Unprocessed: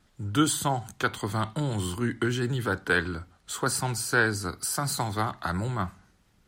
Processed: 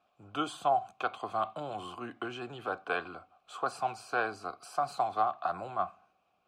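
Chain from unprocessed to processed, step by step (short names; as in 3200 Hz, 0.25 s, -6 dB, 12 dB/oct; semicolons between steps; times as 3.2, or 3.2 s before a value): vowel filter a; gain +8 dB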